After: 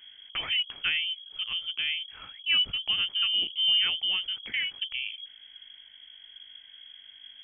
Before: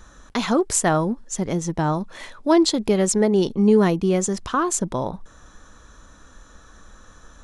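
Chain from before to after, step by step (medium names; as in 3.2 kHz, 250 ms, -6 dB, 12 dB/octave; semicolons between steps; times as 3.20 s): mains buzz 50 Hz, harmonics 5, -44 dBFS -5 dB/octave; frequency inversion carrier 3.3 kHz; trim -9 dB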